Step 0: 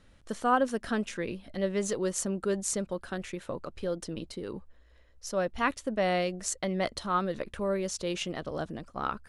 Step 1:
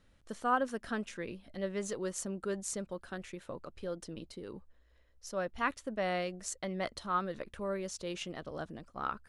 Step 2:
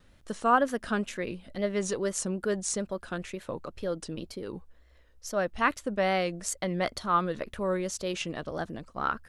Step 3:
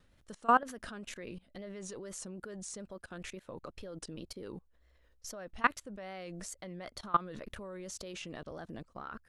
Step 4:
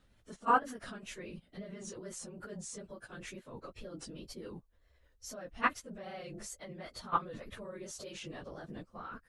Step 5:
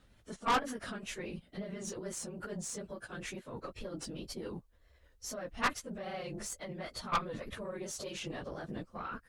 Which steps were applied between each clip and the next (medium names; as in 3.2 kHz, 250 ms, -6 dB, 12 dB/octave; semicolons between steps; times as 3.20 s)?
dynamic bell 1.4 kHz, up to +4 dB, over -40 dBFS, Q 1.1; trim -7 dB
wow and flutter 100 cents; trim +7 dB
level held to a coarse grid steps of 22 dB
phase randomisation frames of 50 ms; trim -1 dB
valve stage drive 31 dB, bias 0.55; trim +6.5 dB